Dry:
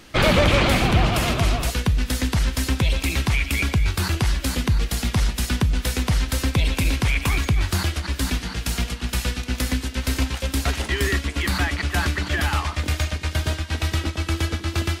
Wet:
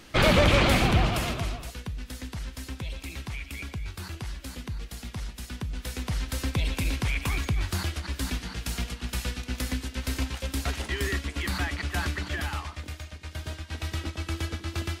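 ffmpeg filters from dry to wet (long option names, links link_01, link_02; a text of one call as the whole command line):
ffmpeg -i in.wav -af "volume=14dB,afade=type=out:start_time=0.82:duration=0.8:silence=0.251189,afade=type=in:start_time=5.52:duration=1:silence=0.398107,afade=type=out:start_time=12.16:duration=0.88:silence=0.316228,afade=type=in:start_time=13.04:duration=1.05:silence=0.354813" out.wav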